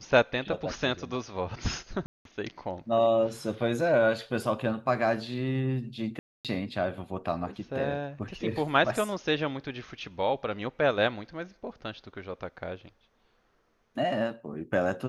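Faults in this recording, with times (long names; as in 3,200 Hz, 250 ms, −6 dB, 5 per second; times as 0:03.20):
0:02.06–0:02.25: drop-out 192 ms
0:06.19–0:06.45: drop-out 257 ms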